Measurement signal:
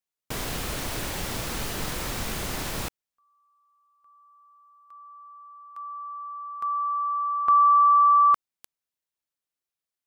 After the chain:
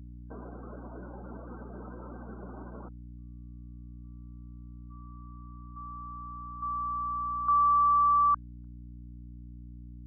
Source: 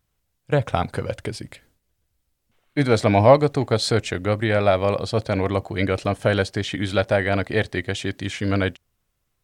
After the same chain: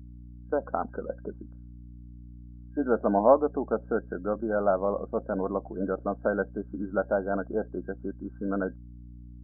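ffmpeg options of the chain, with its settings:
ffmpeg -i in.wav -af "afftdn=noise_reduction=15:noise_floor=-30,afftfilt=real='re*between(b*sr/4096,180,1600)':imag='im*between(b*sr/4096,180,1600)':win_size=4096:overlap=0.75,aeval=exprs='val(0)+0.0126*(sin(2*PI*60*n/s)+sin(2*PI*2*60*n/s)/2+sin(2*PI*3*60*n/s)/3+sin(2*PI*4*60*n/s)/4+sin(2*PI*5*60*n/s)/5)':channel_layout=same,volume=-6dB" out.wav

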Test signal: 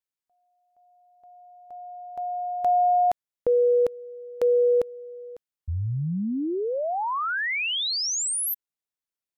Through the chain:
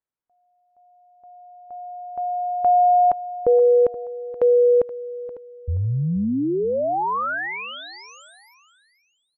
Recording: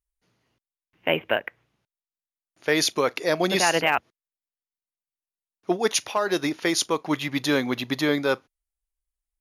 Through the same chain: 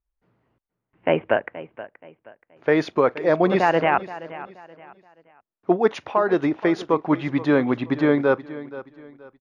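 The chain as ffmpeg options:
ffmpeg -i in.wav -filter_complex "[0:a]lowpass=1400,asplit=2[link_01][link_02];[link_02]aecho=0:1:476|952|1428:0.158|0.0507|0.0162[link_03];[link_01][link_03]amix=inputs=2:normalize=0,volume=5dB" out.wav

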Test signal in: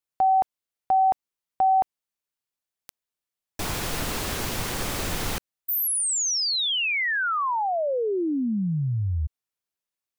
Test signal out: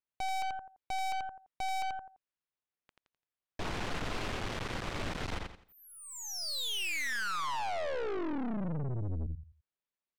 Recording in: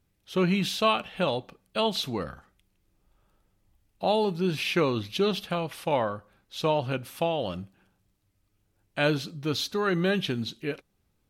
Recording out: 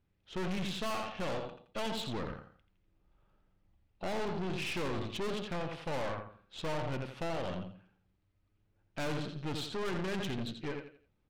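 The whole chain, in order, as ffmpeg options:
ffmpeg -i in.wav -af "lowpass=3200,aecho=1:1:85|170|255|340:0.422|0.131|0.0405|0.0126,aeval=exprs='(tanh(50.1*val(0)+0.75)-tanh(0.75))/50.1':channel_layout=same" out.wav

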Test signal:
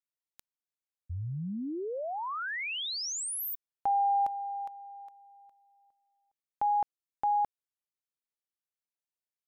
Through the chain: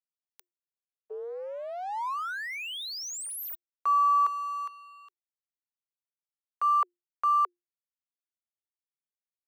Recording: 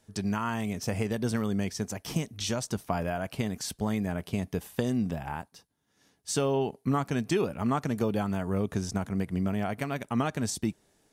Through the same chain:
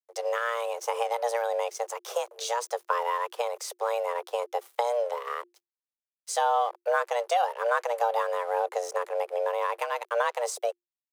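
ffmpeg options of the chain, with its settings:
ffmpeg -i in.wav -af "adynamicequalizer=threshold=0.0112:dfrequency=640:dqfactor=0.84:tfrequency=640:tqfactor=0.84:attack=5:release=100:ratio=0.4:range=2.5:mode=boostabove:tftype=bell,aeval=exprs='sgn(val(0))*max(abs(val(0))-0.00398,0)':channel_layout=same,afreqshift=350" out.wav

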